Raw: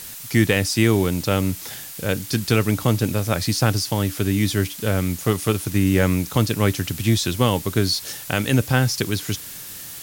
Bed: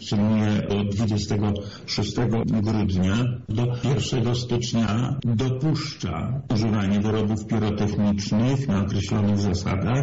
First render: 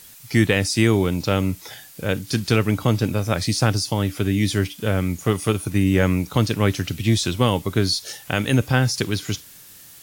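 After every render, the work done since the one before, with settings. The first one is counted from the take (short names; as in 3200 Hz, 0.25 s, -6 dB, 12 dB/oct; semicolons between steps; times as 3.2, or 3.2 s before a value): noise print and reduce 9 dB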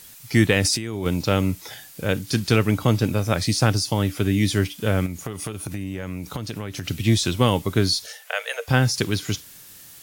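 0.62–1.06 negative-ratio compressor -26 dBFS; 5.06–6.87 compressor 16:1, threshold -25 dBFS; 8.06–8.68 rippled Chebyshev high-pass 450 Hz, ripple 6 dB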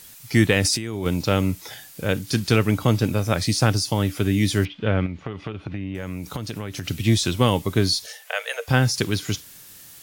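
4.65–5.95 LPF 3500 Hz 24 dB/oct; 7.5–8.36 notch 1400 Hz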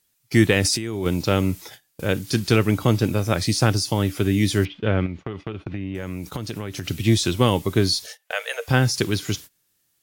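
gate -36 dBFS, range -24 dB; bell 360 Hz +4 dB 0.34 oct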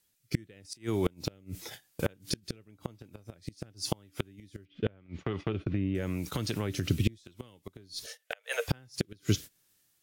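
flipped gate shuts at -11 dBFS, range -34 dB; rotary speaker horn 0.9 Hz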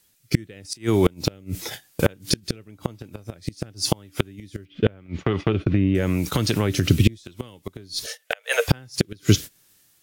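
gain +11 dB; limiter -3 dBFS, peak gain reduction 2 dB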